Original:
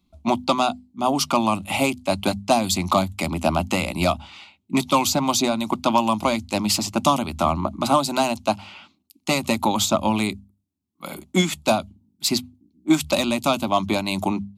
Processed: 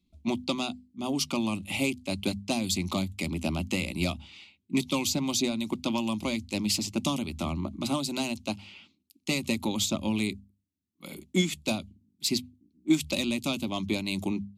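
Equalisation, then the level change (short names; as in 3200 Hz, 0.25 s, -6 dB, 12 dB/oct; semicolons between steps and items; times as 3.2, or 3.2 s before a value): band shelf 1000 Hz -11.5 dB; high shelf 12000 Hz -5 dB; -5.5 dB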